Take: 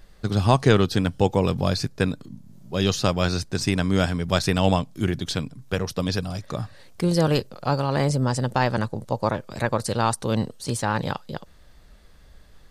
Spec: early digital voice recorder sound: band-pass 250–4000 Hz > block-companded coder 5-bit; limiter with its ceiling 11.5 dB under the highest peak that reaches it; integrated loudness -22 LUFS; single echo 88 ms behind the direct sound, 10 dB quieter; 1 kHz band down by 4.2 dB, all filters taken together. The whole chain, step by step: peaking EQ 1 kHz -5.5 dB; peak limiter -16 dBFS; band-pass 250–4000 Hz; delay 88 ms -10 dB; block-companded coder 5-bit; trim +10 dB

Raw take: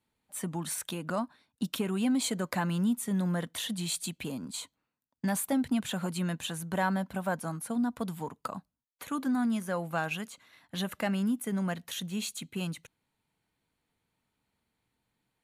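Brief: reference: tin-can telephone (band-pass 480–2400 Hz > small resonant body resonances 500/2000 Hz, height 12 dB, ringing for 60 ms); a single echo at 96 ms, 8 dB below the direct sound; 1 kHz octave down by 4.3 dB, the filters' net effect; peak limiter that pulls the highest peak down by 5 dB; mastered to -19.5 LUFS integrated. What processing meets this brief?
peaking EQ 1 kHz -5 dB; peak limiter -25 dBFS; band-pass 480–2400 Hz; delay 96 ms -8 dB; small resonant body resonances 500/2000 Hz, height 12 dB, ringing for 60 ms; trim +21 dB

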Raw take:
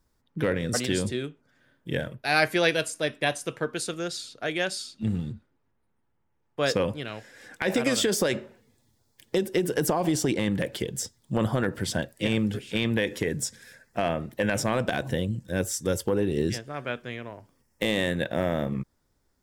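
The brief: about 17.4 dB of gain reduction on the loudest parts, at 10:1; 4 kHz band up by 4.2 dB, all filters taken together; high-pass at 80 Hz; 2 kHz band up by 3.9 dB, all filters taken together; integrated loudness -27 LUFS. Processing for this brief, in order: high-pass 80 Hz; peaking EQ 2 kHz +4 dB; peaking EQ 4 kHz +4 dB; compression 10:1, threshold -32 dBFS; trim +10 dB

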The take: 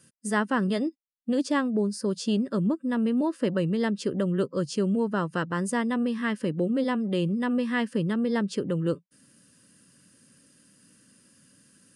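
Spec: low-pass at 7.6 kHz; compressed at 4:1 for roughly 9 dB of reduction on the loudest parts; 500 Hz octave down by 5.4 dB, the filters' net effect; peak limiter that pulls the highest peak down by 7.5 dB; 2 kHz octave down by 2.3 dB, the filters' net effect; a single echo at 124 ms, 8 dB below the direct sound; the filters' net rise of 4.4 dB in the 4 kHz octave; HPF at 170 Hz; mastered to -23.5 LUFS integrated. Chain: high-pass 170 Hz; low-pass 7.6 kHz; peaking EQ 500 Hz -6.5 dB; peaking EQ 2 kHz -4 dB; peaking EQ 4 kHz +8 dB; compression 4:1, threshold -35 dBFS; peak limiter -30.5 dBFS; delay 124 ms -8 dB; trim +15 dB

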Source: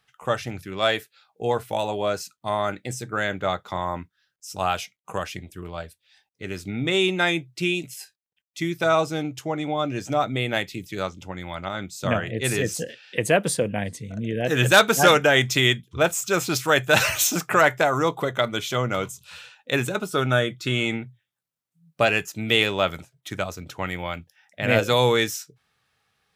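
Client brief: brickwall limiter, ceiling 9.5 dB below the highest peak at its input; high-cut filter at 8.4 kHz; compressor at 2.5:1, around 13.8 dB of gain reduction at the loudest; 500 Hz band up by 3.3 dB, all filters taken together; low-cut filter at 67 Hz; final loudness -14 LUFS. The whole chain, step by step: high-pass 67 Hz; low-pass 8.4 kHz; peaking EQ 500 Hz +4 dB; compression 2.5:1, threshold -30 dBFS; trim +19.5 dB; peak limiter -1.5 dBFS

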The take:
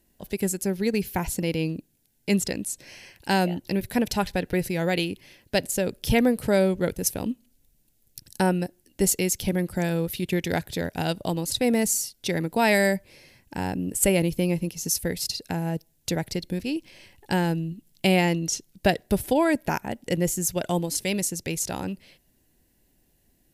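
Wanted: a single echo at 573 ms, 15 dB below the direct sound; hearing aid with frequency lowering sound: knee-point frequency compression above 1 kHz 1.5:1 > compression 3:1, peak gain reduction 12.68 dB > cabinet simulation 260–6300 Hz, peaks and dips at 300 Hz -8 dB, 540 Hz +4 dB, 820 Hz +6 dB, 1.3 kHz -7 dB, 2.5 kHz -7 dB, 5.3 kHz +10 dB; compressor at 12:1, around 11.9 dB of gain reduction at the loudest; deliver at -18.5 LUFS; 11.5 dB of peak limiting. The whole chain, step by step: compression 12:1, threshold -28 dBFS; peak limiter -26.5 dBFS; delay 573 ms -15 dB; knee-point frequency compression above 1 kHz 1.5:1; compression 3:1, threshold -47 dBFS; cabinet simulation 260–6300 Hz, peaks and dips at 300 Hz -8 dB, 540 Hz +4 dB, 820 Hz +6 dB, 1.3 kHz -7 dB, 2.5 kHz -7 dB, 5.3 kHz +10 dB; trim +29 dB

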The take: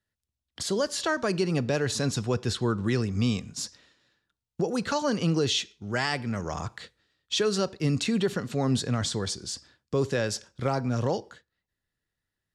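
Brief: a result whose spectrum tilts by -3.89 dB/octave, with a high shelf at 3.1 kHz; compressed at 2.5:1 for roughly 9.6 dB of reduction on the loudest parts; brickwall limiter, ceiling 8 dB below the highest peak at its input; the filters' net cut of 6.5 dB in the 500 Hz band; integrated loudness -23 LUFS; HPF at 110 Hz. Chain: high-pass 110 Hz; peaking EQ 500 Hz -8.5 dB; treble shelf 3.1 kHz +6 dB; compression 2.5:1, threshold -37 dBFS; trim +16.5 dB; peak limiter -13 dBFS

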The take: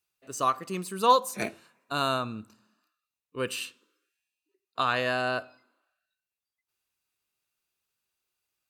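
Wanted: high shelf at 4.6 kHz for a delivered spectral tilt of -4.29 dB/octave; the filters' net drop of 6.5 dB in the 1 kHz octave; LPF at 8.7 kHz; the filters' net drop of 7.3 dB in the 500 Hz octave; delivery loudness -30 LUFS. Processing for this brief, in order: low-pass 8.7 kHz; peaking EQ 500 Hz -7 dB; peaking EQ 1 kHz -5.5 dB; treble shelf 4.6 kHz -9 dB; trim +4 dB

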